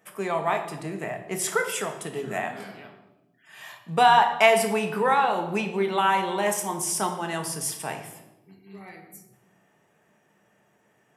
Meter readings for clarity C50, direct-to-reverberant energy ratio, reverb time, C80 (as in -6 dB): 8.5 dB, 4.0 dB, 1.0 s, 11.0 dB